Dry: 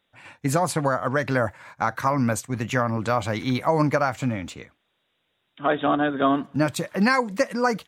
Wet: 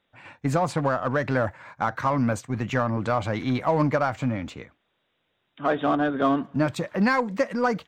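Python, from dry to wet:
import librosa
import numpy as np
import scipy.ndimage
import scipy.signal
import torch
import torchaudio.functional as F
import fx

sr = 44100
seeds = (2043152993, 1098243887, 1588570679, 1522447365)

p1 = fx.high_shelf(x, sr, hz=4100.0, db=-10.0)
p2 = 10.0 ** (-27.0 / 20.0) * np.tanh(p1 / 10.0 ** (-27.0 / 20.0))
p3 = p1 + F.gain(torch.from_numpy(p2), -5.0).numpy()
p4 = fx.peak_eq(p3, sr, hz=11000.0, db=-12.0, octaves=0.36)
y = F.gain(torch.from_numpy(p4), -2.5).numpy()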